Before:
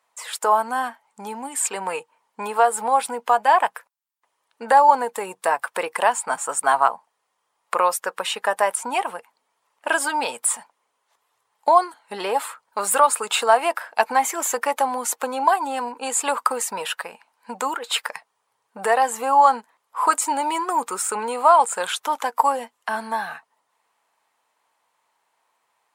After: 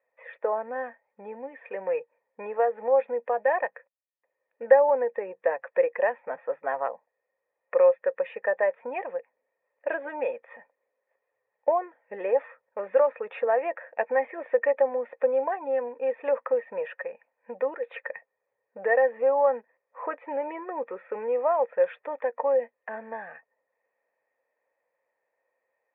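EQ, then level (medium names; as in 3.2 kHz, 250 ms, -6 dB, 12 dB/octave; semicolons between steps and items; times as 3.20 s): cascade formant filter e; distance through air 380 m; +8.5 dB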